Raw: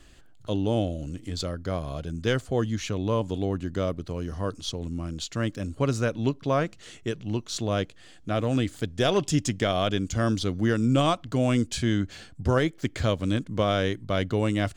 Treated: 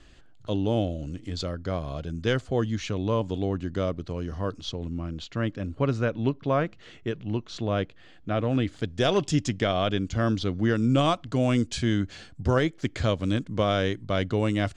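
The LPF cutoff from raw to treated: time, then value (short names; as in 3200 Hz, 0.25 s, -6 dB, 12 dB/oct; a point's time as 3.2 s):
4.14 s 5900 Hz
5.19 s 3200 Hz
8.57 s 3200 Hz
9.05 s 7800 Hz
9.83 s 4400 Hz
10.56 s 4400 Hz
11.11 s 7300 Hz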